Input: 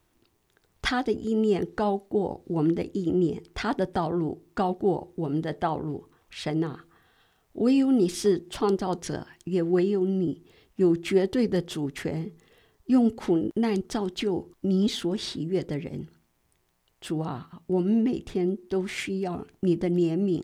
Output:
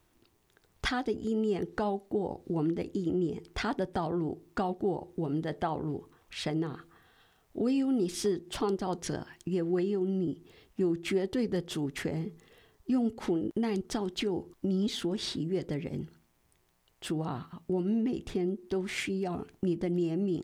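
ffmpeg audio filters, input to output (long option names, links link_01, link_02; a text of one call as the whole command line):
ffmpeg -i in.wav -af "acompressor=threshold=-31dB:ratio=2" out.wav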